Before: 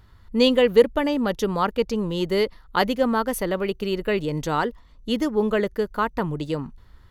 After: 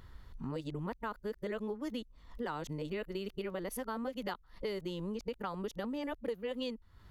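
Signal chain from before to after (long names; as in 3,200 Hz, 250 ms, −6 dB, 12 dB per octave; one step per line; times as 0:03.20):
played backwards from end to start
downward compressor 6 to 1, threshold −34 dBFS, peak gain reduction 22.5 dB
level −2.5 dB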